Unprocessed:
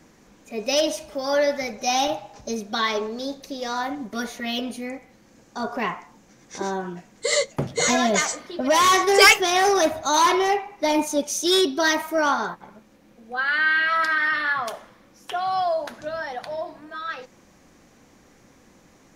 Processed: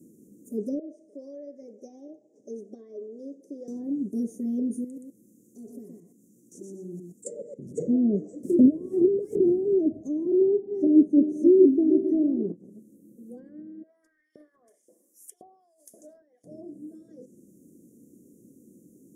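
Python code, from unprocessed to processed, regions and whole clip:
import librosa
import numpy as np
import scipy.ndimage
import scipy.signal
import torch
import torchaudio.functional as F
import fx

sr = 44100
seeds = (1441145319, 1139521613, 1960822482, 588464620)

y = fx.chain(x, sr, fx.highpass(hz=720.0, slope=12),
    fx.spacing_loss(db_at_10k=27),
    fx.band_squash(depth_pct=70), at=(0.79, 3.68))
y = fx.chain(y, sr, fx.high_shelf(hz=2400.0, db=7.5),
    fx.level_steps(step_db=20),
    fx.echo_single(ms=123, db=-4.0), at=(4.84, 7.74))
y = fx.chain(y, sr, fx.halfwave_hold(),
    fx.notch(hz=690.0, q=23.0),
    fx.over_compress(threshold_db=-21.0, ratio=-1.0), at=(8.43, 9.74))
y = fx.chain(y, sr, fx.reverse_delay_fb(ms=228, feedback_pct=53, wet_db=-9),
    fx.low_shelf(hz=500.0, db=5.0), at=(10.41, 12.52))
y = fx.chain(y, sr, fx.over_compress(threshold_db=-29.0, ratio=-1.0),
    fx.filter_lfo_highpass(shape='saw_up', hz=1.9, low_hz=640.0, high_hz=3000.0, q=3.1), at=(13.83, 16.44))
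y = scipy.signal.sosfilt(scipy.signal.butter(2, 210.0, 'highpass', fs=sr, output='sos'), y)
y = fx.env_lowpass_down(y, sr, base_hz=640.0, full_db=-17.0)
y = scipy.signal.sosfilt(scipy.signal.cheby2(4, 50, [830.0, 4300.0], 'bandstop', fs=sr, output='sos'), y)
y = y * librosa.db_to_amplitude(5.5)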